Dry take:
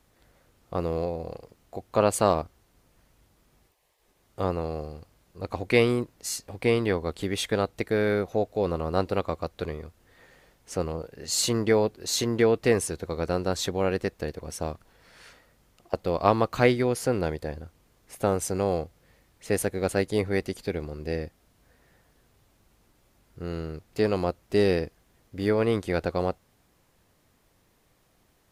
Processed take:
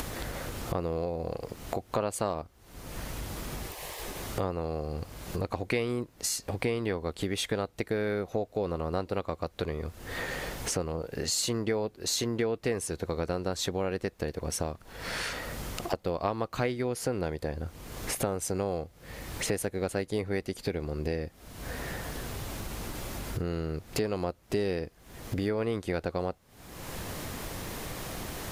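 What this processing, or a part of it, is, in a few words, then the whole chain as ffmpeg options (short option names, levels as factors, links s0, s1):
upward and downward compression: -af "acompressor=mode=upward:threshold=0.0316:ratio=2.5,acompressor=threshold=0.0112:ratio=4,volume=2.82"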